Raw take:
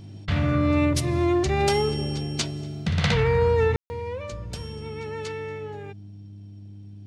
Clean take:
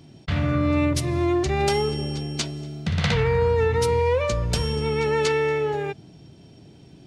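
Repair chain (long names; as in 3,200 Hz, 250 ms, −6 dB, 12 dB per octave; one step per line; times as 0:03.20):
hum removal 101.1 Hz, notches 3
ambience match 0:03.76–0:03.90
level correction +11.5 dB, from 0:03.78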